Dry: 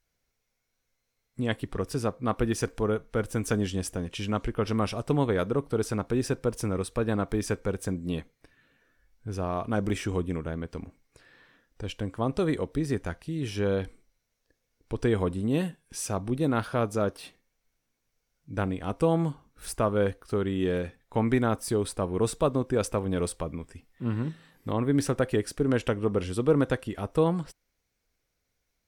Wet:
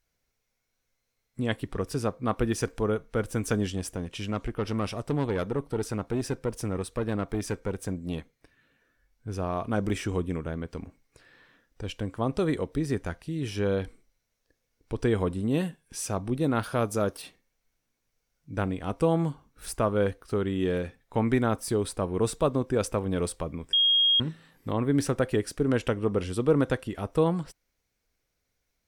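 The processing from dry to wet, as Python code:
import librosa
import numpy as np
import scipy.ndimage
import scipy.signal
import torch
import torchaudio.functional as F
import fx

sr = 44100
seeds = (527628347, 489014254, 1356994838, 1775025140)

y = fx.tube_stage(x, sr, drive_db=20.0, bias=0.45, at=(3.72, 9.28))
y = fx.high_shelf(y, sr, hz=7200.0, db=10.0, at=(16.63, 17.22))
y = fx.edit(y, sr, fx.bleep(start_s=23.73, length_s=0.47, hz=3260.0, db=-18.5), tone=tone)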